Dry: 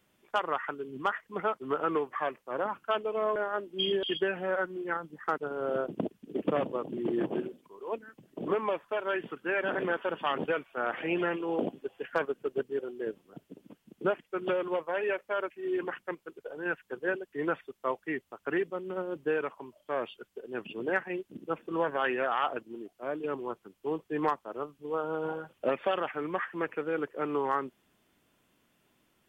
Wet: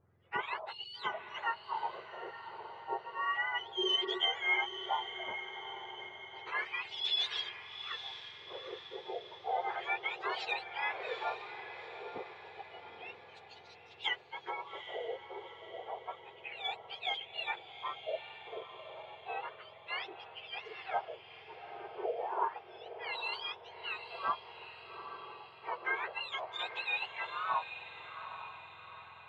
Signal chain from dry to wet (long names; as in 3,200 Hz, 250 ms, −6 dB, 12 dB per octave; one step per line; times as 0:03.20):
frequency axis turned over on the octave scale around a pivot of 1,100 Hz
auto-filter low-pass sine 0.31 Hz 420–3,800 Hz
feedback delay with all-pass diffusion 823 ms, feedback 52%, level −10 dB
level −5 dB